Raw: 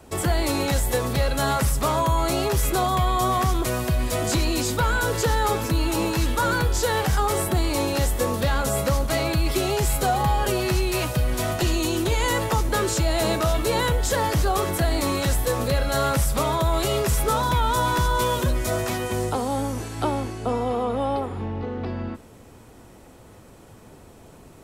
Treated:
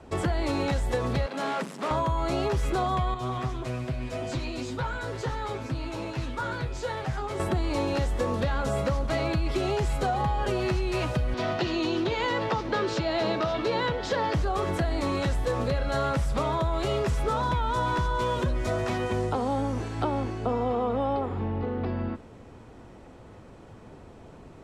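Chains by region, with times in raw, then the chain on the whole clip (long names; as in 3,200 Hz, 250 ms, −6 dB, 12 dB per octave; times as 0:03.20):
0:01.26–0:01.91: hard clipping −24.5 dBFS + elliptic high-pass filter 170 Hz
0:03.14–0:07.40: tuned comb filter 130 Hz, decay 0.15 s, mix 90% + highs frequency-modulated by the lows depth 0.22 ms
0:11.34–0:14.34: high-pass filter 140 Hz + high shelf with overshoot 6,400 Hz −10 dB, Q 1.5
whole clip: low-pass filter 7,400 Hz 12 dB per octave; high-shelf EQ 4,400 Hz −11 dB; downward compressor, threshold −23 dBFS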